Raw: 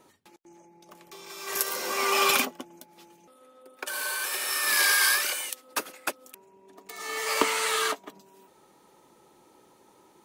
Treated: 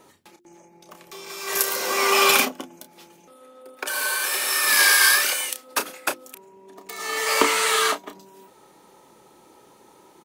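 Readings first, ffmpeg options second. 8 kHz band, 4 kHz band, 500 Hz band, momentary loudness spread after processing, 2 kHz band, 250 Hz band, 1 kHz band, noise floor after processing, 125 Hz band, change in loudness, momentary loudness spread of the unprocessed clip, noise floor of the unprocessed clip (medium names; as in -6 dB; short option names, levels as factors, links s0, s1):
+6.0 dB, +6.0 dB, +6.0 dB, 18 LU, +6.0 dB, +5.0 dB, +5.5 dB, -54 dBFS, no reading, +6.0 dB, 15 LU, -60 dBFS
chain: -filter_complex "[0:a]acontrast=43,bandreject=f=50:t=h:w=6,bandreject=f=100:t=h:w=6,bandreject=f=150:t=h:w=6,bandreject=f=200:t=h:w=6,bandreject=f=250:t=h:w=6,bandreject=f=300:t=h:w=6,bandreject=f=350:t=h:w=6,asplit=2[s0][s1];[s1]adelay=31,volume=0.355[s2];[s0][s2]amix=inputs=2:normalize=0"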